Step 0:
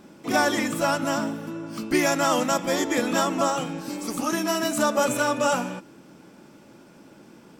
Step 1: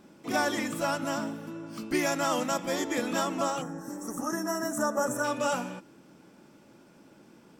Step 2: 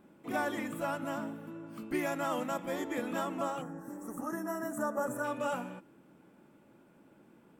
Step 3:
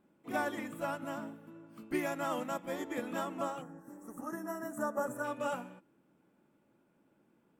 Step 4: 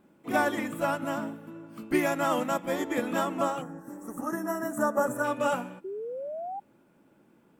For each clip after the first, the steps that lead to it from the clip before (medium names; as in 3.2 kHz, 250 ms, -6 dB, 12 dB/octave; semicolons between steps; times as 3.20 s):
time-frequency box 3.62–5.24 s, 2–5.3 kHz -19 dB; trim -6 dB
peaking EQ 5.4 kHz -14 dB 1 oct; trim -5 dB
upward expansion 1.5:1, over -49 dBFS
painted sound rise, 5.84–6.60 s, 370–820 Hz -44 dBFS; trim +8.5 dB